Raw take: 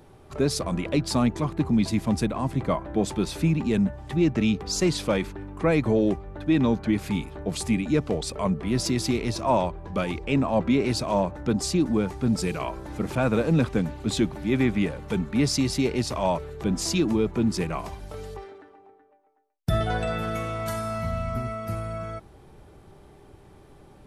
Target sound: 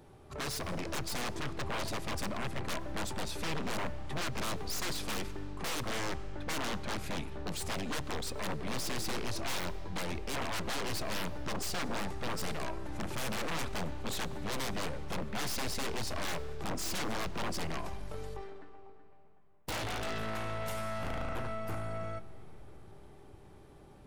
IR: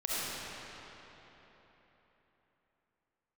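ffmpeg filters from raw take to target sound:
-filter_complex "[0:a]aeval=exprs='0.316*(cos(1*acos(clip(val(0)/0.316,-1,1)))-cos(1*PI/2))+0.0708*(cos(4*acos(clip(val(0)/0.316,-1,1)))-cos(4*PI/2))+0.0891*(cos(7*acos(clip(val(0)/0.316,-1,1)))-cos(7*PI/2))':c=same,aeval=exprs='0.0501*(abs(mod(val(0)/0.0501+3,4)-2)-1)':c=same,asplit=2[a][b];[1:a]atrim=start_sample=2205,adelay=28[c];[b][c]afir=irnorm=-1:irlink=0,volume=-23.5dB[d];[a][d]amix=inputs=2:normalize=0,volume=-4.5dB"

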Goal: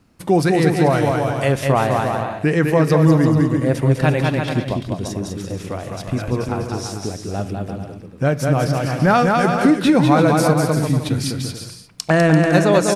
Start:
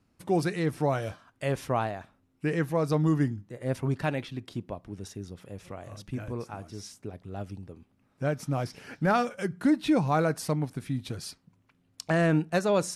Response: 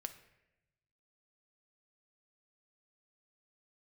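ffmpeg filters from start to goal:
-filter_complex "[0:a]aecho=1:1:200|340|438|506.6|554.6:0.631|0.398|0.251|0.158|0.1,acompressor=threshold=-28dB:ratio=1.5,asplit=2[a][b];[1:a]atrim=start_sample=2205[c];[b][c]afir=irnorm=-1:irlink=0,volume=2.5dB[d];[a][d]amix=inputs=2:normalize=0,volume=7dB"

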